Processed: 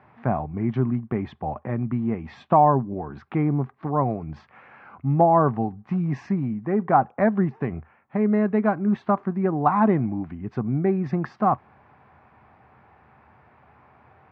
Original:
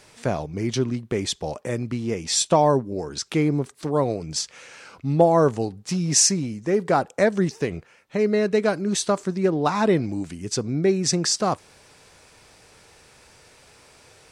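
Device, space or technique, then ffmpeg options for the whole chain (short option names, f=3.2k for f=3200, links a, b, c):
bass cabinet: -af "highpass=76,equalizer=f=79:t=q:w=4:g=9,equalizer=f=130:t=q:w=4:g=7,equalizer=f=220:t=q:w=4:g=8,equalizer=f=490:t=q:w=4:g=-7,equalizer=f=770:t=q:w=4:g=9,equalizer=f=1.1k:t=q:w=4:g=7,lowpass=f=2k:w=0.5412,lowpass=f=2k:w=1.3066,volume=-3dB"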